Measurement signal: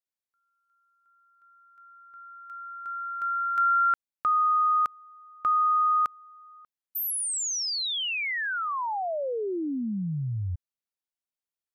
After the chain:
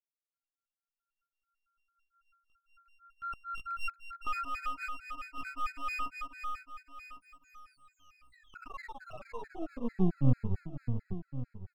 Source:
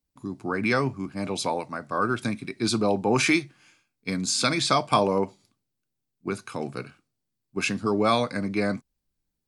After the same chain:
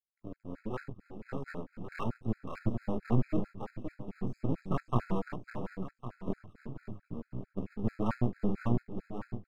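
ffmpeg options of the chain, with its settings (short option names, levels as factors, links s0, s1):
-filter_complex "[0:a]highshelf=f=2900:t=q:w=1.5:g=-9,acrossover=split=150|1600[s0][s1][s2];[s2]acompressor=threshold=0.00501:ratio=6:attack=2.4:release=32[s3];[s0][s1][s3]amix=inputs=3:normalize=0,acrossover=split=410[s4][s5];[s4]aeval=exprs='val(0)*(1-0.5/2+0.5/2*cos(2*PI*3.8*n/s))':c=same[s6];[s5]aeval=exprs='val(0)*(1-0.5/2-0.5/2*cos(2*PI*3.8*n/s))':c=same[s7];[s6][s7]amix=inputs=2:normalize=0,flanger=delay=16.5:depth=2.8:speed=0.59,asubboost=boost=8:cutoff=180,lowpass=8800,bandreject=f=50:t=h:w=6,bandreject=f=100:t=h:w=6,bandreject=f=150:t=h:w=6,bandreject=f=200:t=h:w=6,bandreject=f=250:t=h:w=6,bandreject=f=300:t=h:w=6,bandreject=f=350:t=h:w=6,afwtdn=0.0316,highpass=93,aeval=exprs='max(val(0),0)':c=same,aecho=1:1:553|1106|1659|2212|2765:0.562|0.225|0.09|0.036|0.0144,afftfilt=real='re*gt(sin(2*PI*4.5*pts/sr)*(1-2*mod(floor(b*sr/1024/1300),2)),0)':imag='im*gt(sin(2*PI*4.5*pts/sr)*(1-2*mod(floor(b*sr/1024/1300),2)),0)':win_size=1024:overlap=0.75"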